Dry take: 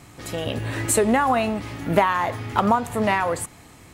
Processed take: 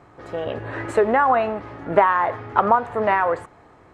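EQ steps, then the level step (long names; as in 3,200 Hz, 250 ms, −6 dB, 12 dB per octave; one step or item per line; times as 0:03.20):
dynamic equaliser 2,300 Hz, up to +6 dB, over −36 dBFS, Q 0.77
head-to-tape spacing loss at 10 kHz 21 dB
flat-topped bell 780 Hz +10 dB 2.6 octaves
−6.5 dB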